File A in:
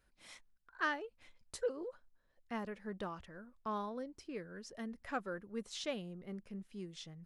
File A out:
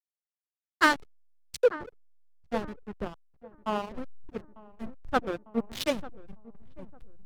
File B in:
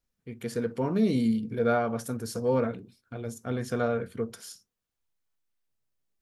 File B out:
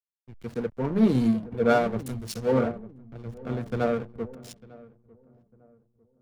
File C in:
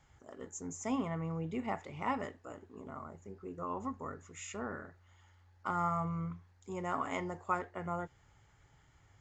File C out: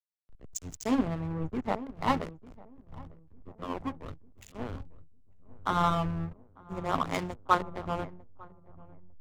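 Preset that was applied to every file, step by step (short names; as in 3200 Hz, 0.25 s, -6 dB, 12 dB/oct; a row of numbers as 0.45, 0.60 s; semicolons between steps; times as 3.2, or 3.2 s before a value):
bin magnitudes rounded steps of 15 dB; in parallel at +3 dB: compressor 10:1, threshold -38 dBFS; on the sum: backlash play -26.5 dBFS; darkening echo 0.9 s, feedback 62%, low-pass 1100 Hz, level -10.5 dB; three-band expander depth 100%; normalise peaks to -9 dBFS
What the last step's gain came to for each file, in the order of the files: +6.5, 0.0, +2.5 dB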